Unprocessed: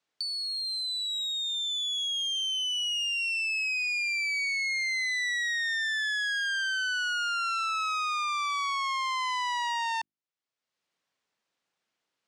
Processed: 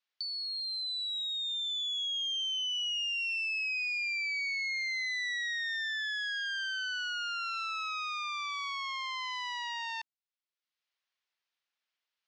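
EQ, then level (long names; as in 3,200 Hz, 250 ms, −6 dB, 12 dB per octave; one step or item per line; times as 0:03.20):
Butterworth low-pass 9,000 Hz 48 dB per octave
high-frequency loss of the air 230 metres
first difference
+8.5 dB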